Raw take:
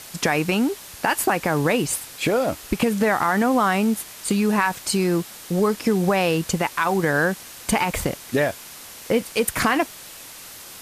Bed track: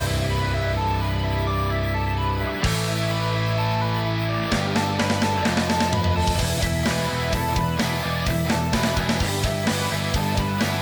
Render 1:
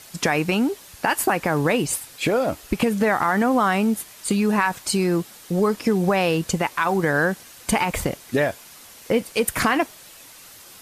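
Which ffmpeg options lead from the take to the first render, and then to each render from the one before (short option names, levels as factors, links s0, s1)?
-af "afftdn=nr=6:nf=-41"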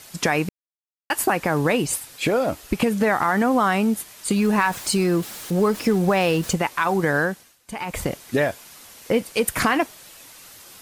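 -filter_complex "[0:a]asettb=1/sr,asplit=3[s0][s1][s2];[s0]atrim=end=4.364[s3];[s1]atrim=start=4.36:end=6.56,asetpts=PTS-STARTPTS,afade=t=in:d=0.004:c=qsin,afade=t=out:st=2.196:d=0.004:c=qsin,aeval=exprs='val(0)+0.5*0.02*sgn(val(0))':c=same[s4];[s2]atrim=start=6.556[s5];[s3][s4]acrossfade=d=0.004:c1=hsin:c2=qsin[s6];[s6][s5]acrossfade=d=0.004:c1=qsin:c2=hsin,asplit=5[s7][s8][s9][s10][s11];[s7]atrim=end=0.49,asetpts=PTS-STARTPTS,afade=t=out:st=0.486:d=0.004:c=hsin[s12];[s8]atrim=start=0.49:end=1.1,asetpts=PTS-STARTPTS,volume=0[s13];[s9]atrim=start=1.1:end=7.58,asetpts=PTS-STARTPTS,afade=t=in:d=0.004:c=hsin,afade=t=out:st=6.05:d=0.43:silence=0.133352[s14];[s10]atrim=start=7.58:end=7.69,asetpts=PTS-STARTPTS,volume=0.133[s15];[s11]atrim=start=7.69,asetpts=PTS-STARTPTS,afade=t=in:d=0.43:silence=0.133352[s16];[s12][s13][s14][s15][s16]concat=n=5:v=0:a=1"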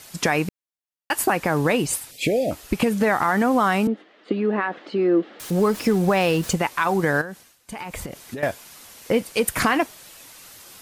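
-filter_complex "[0:a]asettb=1/sr,asplit=3[s0][s1][s2];[s0]atrim=end=2.114[s3];[s1]atrim=start=2.11:end=2.51,asetpts=PTS-STARTPTS,afade=t=in:d=0.004:c=qsin,afade=t=out:st=0.396:d=0.004:c=qsin,asuperstop=centerf=1200:order=8:qfactor=0.9[s4];[s2]atrim=start=2.506[s5];[s3][s4]acrossfade=d=0.004:c1=hsin:c2=qsin[s6];[s6][s5]acrossfade=d=0.004:c1=qsin:c2=hsin,asettb=1/sr,asplit=3[s7][s8][s9];[s7]atrim=end=3.874[s10];[s8]atrim=start=3.87:end=5.4,asetpts=PTS-STARTPTS,afade=t=in:d=0.004:c=qsin,afade=t=out:st=1.526:d=0.004:c=qsin,highpass=f=240:w=0.5412,highpass=f=240:w=1.3066,equalizer=f=310:t=q:w=4:g=7,equalizer=f=500:t=q:w=4:g=4,equalizer=f=970:t=q:w=4:g=-9,equalizer=f=1500:t=q:w=4:g=-4,equalizer=f=2400:t=q:w=4:g=-9,lowpass=f=2700:w=0.5412,lowpass=f=2700:w=1.3066[s11];[s9]atrim=start=5.396[s12];[s10][s11]acrossfade=d=0.004:c1=hsin:c2=qsin[s13];[s13][s12]acrossfade=d=0.004:c1=qsin:c2=hsin,asettb=1/sr,asplit=3[s14][s15][s16];[s14]atrim=end=7.214[s17];[s15]atrim=start=7.21:end=8.43,asetpts=PTS-STARTPTS,afade=t=in:d=0.004:c=qsin,afade=t=out:st=1.216:d=0.004:c=qsin,acompressor=threshold=0.0398:ratio=10:attack=3.2:release=140:knee=1:detection=peak[s18];[s16]atrim=start=8.426[s19];[s17][s18]acrossfade=d=0.004:c1=hsin:c2=qsin[s20];[s20][s19]acrossfade=d=0.004:c1=qsin:c2=hsin"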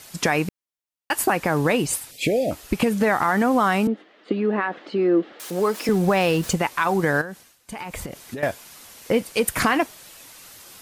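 -filter_complex "[0:a]asettb=1/sr,asplit=3[s0][s1][s2];[s0]atrim=end=5.324[s3];[s1]atrim=start=5.32:end=5.89,asetpts=PTS-STARTPTS,afade=t=in:d=0.004:c=qsin,afade=t=out:st=0.566:d=0.004:c=qsin,highpass=310[s4];[s2]atrim=start=5.886[s5];[s3][s4]acrossfade=d=0.004:c1=hsin:c2=qsin[s6];[s6][s5]acrossfade=d=0.004:c1=qsin:c2=hsin"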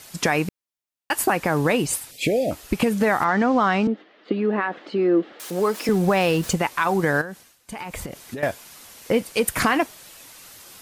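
-filter_complex "[0:a]asettb=1/sr,asplit=3[s0][s1][s2];[s0]atrim=end=3.244[s3];[s1]atrim=start=3.24:end=4.39,asetpts=PTS-STARTPTS,afade=t=in:d=0.004:c=qsin,afade=t=out:st=1.146:d=0.004:c=qsin,lowpass=f=5900:w=0.5412,lowpass=f=5900:w=1.3066[s4];[s2]atrim=start=4.386[s5];[s3][s4]acrossfade=d=0.004:c1=hsin:c2=qsin[s6];[s6][s5]acrossfade=d=0.004:c1=qsin:c2=hsin"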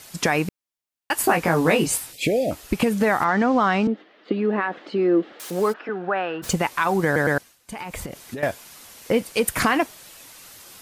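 -filter_complex "[0:a]asettb=1/sr,asplit=3[s0][s1][s2];[s0]atrim=end=1.224[s3];[s1]atrim=start=1.22:end=2.15,asetpts=PTS-STARTPTS,afade=t=in:d=0.004:c=qsin,afade=t=out:st=0.926:d=0.004:c=qsin,asplit=2[s4][s5];[s5]adelay=18,volume=0.75[s6];[s4][s6]amix=inputs=2:normalize=0,atrim=end_sample=41013[s7];[s2]atrim=start=2.146[s8];[s3][s7]acrossfade=d=0.004:c1=hsin:c2=qsin[s9];[s9][s8]acrossfade=d=0.004:c1=qsin:c2=hsin,asplit=3[s10][s11][s12];[s10]afade=t=out:st=5.72:d=0.02[s13];[s11]highpass=470,equalizer=f=510:t=q:w=4:g=-7,equalizer=f=1000:t=q:w=4:g=-5,equalizer=f=1500:t=q:w=4:g=7,equalizer=f=2200:t=q:w=4:g=-10,lowpass=f=2400:w=0.5412,lowpass=f=2400:w=1.3066,afade=t=in:st=5.72:d=0.02,afade=t=out:st=6.42:d=0.02[s14];[s12]afade=t=in:st=6.42:d=0.02[s15];[s13][s14][s15]amix=inputs=3:normalize=0,asplit=4[s16][s17][s18][s19];[s16]atrim=end=7.162[s20];[s17]atrim=start=7.048:end=7.162[s21];[s18]atrim=start=7.048:end=7.162[s22];[s19]atrim=start=7.378[s23];[s20][s21]acrossfade=d=0.004:c1=hsin:c2=hsin[s24];[s24][s22]acrossfade=d=0.004:c1=hsin:c2=hsin[s25];[s25][s23]acrossfade=d=0.004:c1=hsin:c2=hsin"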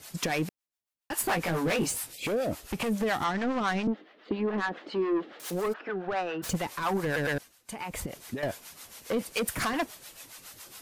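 -filter_complex "[0:a]asoftclip=type=tanh:threshold=0.0891,acrossover=split=530[s0][s1];[s0]aeval=exprs='val(0)*(1-0.7/2+0.7/2*cos(2*PI*7.2*n/s))':c=same[s2];[s1]aeval=exprs='val(0)*(1-0.7/2-0.7/2*cos(2*PI*7.2*n/s))':c=same[s3];[s2][s3]amix=inputs=2:normalize=0"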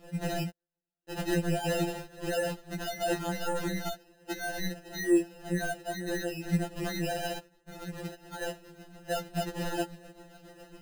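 -af "acrusher=samples=39:mix=1:aa=0.000001,afftfilt=real='re*2.83*eq(mod(b,8),0)':imag='im*2.83*eq(mod(b,8),0)':win_size=2048:overlap=0.75"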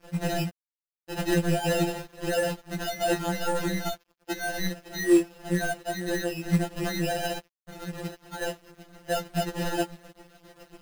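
-filter_complex "[0:a]asplit=2[s0][s1];[s1]acrusher=bits=3:mode=log:mix=0:aa=0.000001,volume=0.708[s2];[s0][s2]amix=inputs=2:normalize=0,aeval=exprs='sgn(val(0))*max(abs(val(0))-0.00299,0)':c=same"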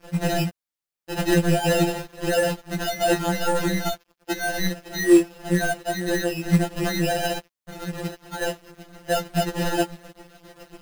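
-af "volume=1.78"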